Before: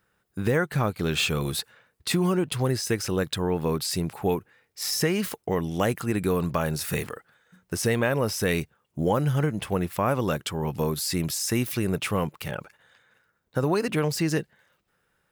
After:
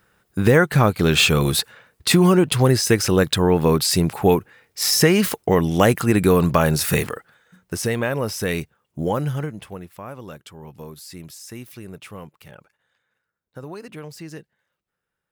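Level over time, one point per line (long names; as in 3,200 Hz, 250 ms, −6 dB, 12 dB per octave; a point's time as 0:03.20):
0:06.87 +9 dB
0:07.92 +1 dB
0:09.23 +1 dB
0:09.89 −11.5 dB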